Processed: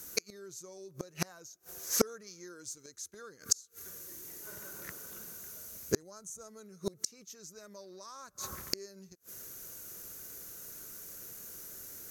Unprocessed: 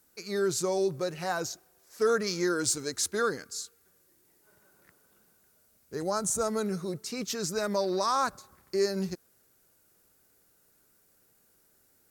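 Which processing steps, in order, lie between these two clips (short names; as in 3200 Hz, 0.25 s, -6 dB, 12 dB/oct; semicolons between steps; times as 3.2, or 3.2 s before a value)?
thirty-one-band EQ 250 Hz -3 dB, 800 Hz -7 dB, 6300 Hz +11 dB, 12500 Hz +9 dB; flipped gate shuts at -26 dBFS, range -36 dB; gain +15 dB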